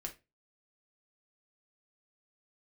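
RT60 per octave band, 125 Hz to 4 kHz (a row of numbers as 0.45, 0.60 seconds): 0.35, 0.30, 0.30, 0.20, 0.25, 0.20 seconds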